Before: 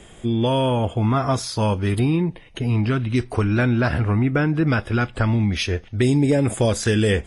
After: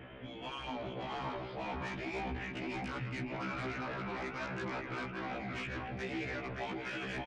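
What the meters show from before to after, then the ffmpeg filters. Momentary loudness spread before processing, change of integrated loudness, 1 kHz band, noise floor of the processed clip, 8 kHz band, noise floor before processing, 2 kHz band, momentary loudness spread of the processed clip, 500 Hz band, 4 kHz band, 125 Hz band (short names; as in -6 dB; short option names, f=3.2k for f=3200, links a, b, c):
4 LU, -19.0 dB, -12.5 dB, -46 dBFS, -26.0 dB, -45 dBFS, -12.0 dB, 2 LU, -19.0 dB, -16.0 dB, -25.5 dB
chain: -af "afftfilt=real='re*lt(hypot(re,im),0.282)':imag='im*lt(hypot(re,im),0.282)':win_size=1024:overlap=0.75,equalizer=f=230:t=o:w=0.21:g=5.5,dynaudnorm=f=240:g=9:m=14.5dB,alimiter=limit=-9dB:level=0:latency=1:release=287,areverse,acompressor=threshold=-31dB:ratio=12,areverse,asoftclip=type=tanh:threshold=-26dB,highpass=f=170:t=q:w=0.5412,highpass=f=170:t=q:w=1.307,lowpass=f=2.9k:t=q:w=0.5176,lowpass=f=2.9k:t=q:w=0.7071,lowpass=f=2.9k:t=q:w=1.932,afreqshift=-110,aecho=1:1:153|573:0.266|0.631,aeval=exprs='0.0891*(cos(1*acos(clip(val(0)/0.0891,-1,1)))-cos(1*PI/2))+0.0282*(cos(3*acos(clip(val(0)/0.0891,-1,1)))-cos(3*PI/2))+0.0282*(cos(5*acos(clip(val(0)/0.0891,-1,1)))-cos(5*PI/2))':c=same,afftfilt=real='re*1.73*eq(mod(b,3),0)':imag='im*1.73*eq(mod(b,3),0)':win_size=2048:overlap=0.75,volume=-3.5dB"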